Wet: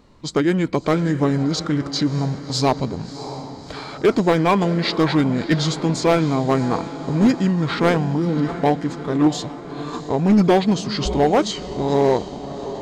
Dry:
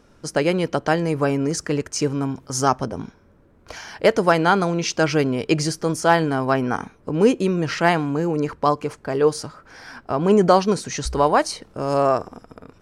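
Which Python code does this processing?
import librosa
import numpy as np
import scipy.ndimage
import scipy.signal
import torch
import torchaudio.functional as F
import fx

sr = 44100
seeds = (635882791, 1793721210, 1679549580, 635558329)

y = fx.echo_diffused(x, sr, ms=650, feedback_pct=58, wet_db=-13.5)
y = fx.formant_shift(y, sr, semitones=-5)
y = np.clip(10.0 ** (11.5 / 20.0) * y, -1.0, 1.0) / 10.0 ** (11.5 / 20.0)
y = F.gain(torch.from_numpy(y), 2.0).numpy()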